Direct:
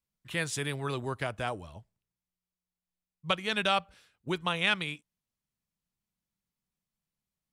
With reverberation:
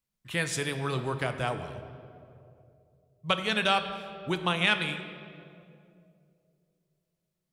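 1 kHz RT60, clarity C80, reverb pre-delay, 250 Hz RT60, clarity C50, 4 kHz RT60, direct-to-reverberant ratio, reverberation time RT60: 2.2 s, 10.0 dB, 4 ms, 2.8 s, 9.0 dB, 1.5 s, 7.5 dB, 2.6 s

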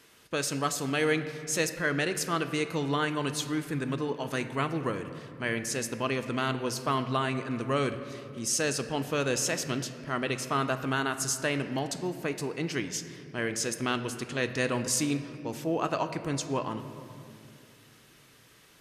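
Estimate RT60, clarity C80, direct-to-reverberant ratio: 2.3 s, 11.5 dB, 8.5 dB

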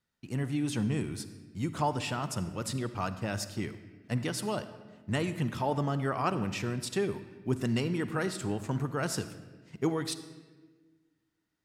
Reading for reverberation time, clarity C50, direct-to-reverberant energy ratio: 1.3 s, 12.0 dB, 11.5 dB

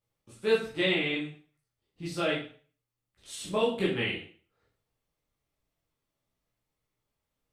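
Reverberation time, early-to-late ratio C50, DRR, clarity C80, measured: 0.45 s, 5.0 dB, -7.5 dB, 9.5 dB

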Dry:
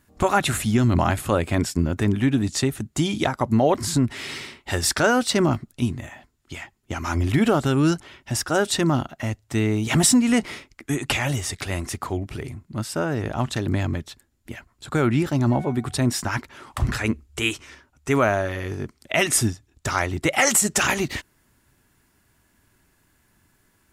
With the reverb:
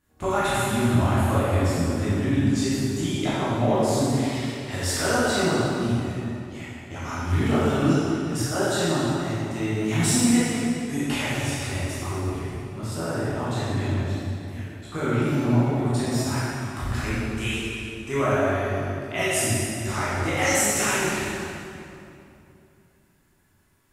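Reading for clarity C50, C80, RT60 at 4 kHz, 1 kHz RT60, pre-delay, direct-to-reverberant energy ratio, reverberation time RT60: -4.5 dB, -2.0 dB, 2.0 s, 2.6 s, 12 ms, -11.0 dB, 2.8 s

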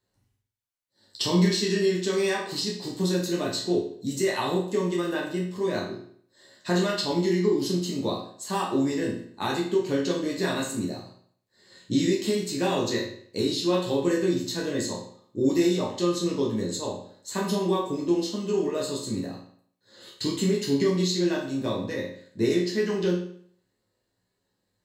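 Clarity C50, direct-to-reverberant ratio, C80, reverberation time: 4.5 dB, -3.5 dB, 9.0 dB, 0.60 s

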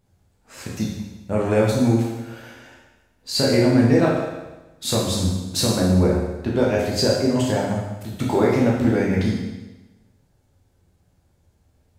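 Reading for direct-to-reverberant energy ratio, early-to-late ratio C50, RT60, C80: -4.5 dB, 1.5 dB, 1.1 s, 4.0 dB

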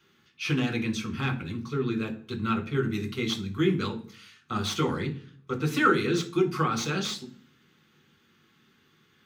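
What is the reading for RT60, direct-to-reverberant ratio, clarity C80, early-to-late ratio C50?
0.45 s, 2.5 dB, 19.0 dB, 14.5 dB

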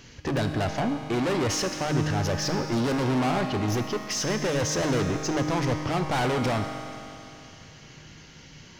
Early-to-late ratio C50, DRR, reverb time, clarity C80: 5.0 dB, 3.5 dB, 2.8 s, 6.0 dB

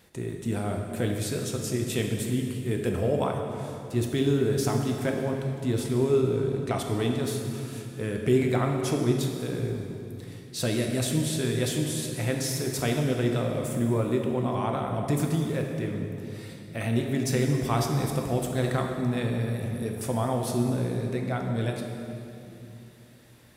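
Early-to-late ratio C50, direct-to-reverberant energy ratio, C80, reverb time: 3.5 dB, 2.0 dB, 4.5 dB, 2.9 s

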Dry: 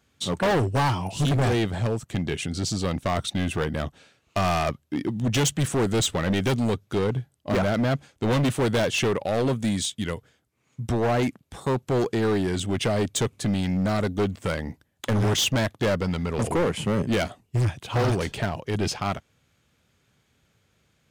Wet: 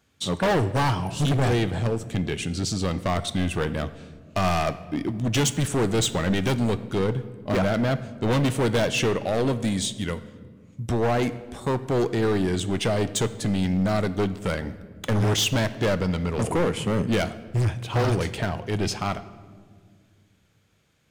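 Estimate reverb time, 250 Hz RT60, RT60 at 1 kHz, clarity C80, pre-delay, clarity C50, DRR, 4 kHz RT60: 1.8 s, 2.7 s, 1.5 s, 16.0 dB, 5 ms, 14.5 dB, 12.0 dB, 1.0 s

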